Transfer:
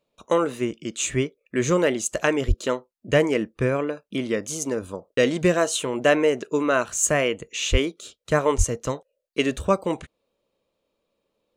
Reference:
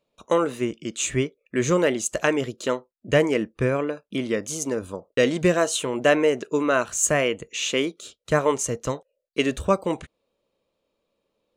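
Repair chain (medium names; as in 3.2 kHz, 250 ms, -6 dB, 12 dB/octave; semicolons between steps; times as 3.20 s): 2.47–2.59 s: high-pass 140 Hz 24 dB/octave; 7.71–7.83 s: high-pass 140 Hz 24 dB/octave; 8.57–8.69 s: high-pass 140 Hz 24 dB/octave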